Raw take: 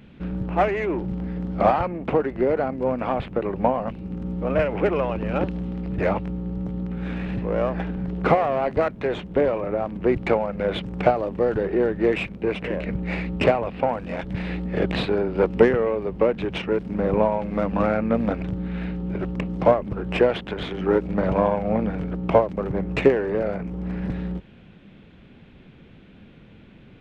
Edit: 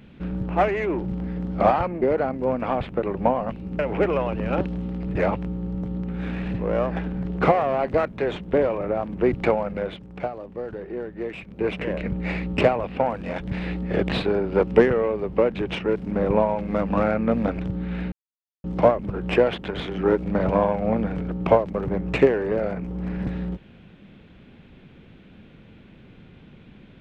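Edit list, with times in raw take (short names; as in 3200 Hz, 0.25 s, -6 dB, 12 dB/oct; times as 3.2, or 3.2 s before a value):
2.02–2.41 cut
4.18–4.62 cut
10.53–12.49 dip -10.5 dB, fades 0.25 s
18.95–19.47 mute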